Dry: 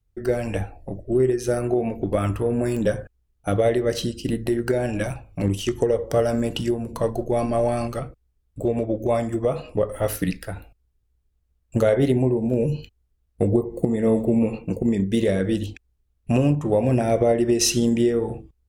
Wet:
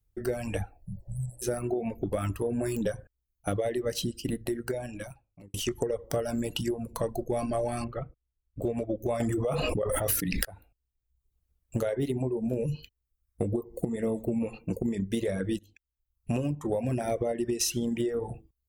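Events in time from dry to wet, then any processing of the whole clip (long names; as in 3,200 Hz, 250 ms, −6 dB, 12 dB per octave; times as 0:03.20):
0:00.89–0:01.40: healed spectral selection 200–7,300 Hz before
0:04.11–0:05.54: fade out
0:07.84–0:08.62: high-frequency loss of the air 450 metres
0:09.20–0:10.45: envelope flattener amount 100%
0:15.59–0:16.39: fade in, from −18 dB
whole clip: reverb reduction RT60 0.72 s; high-shelf EQ 9,400 Hz +10.5 dB; downward compressor, threshold −22 dBFS; level −3.5 dB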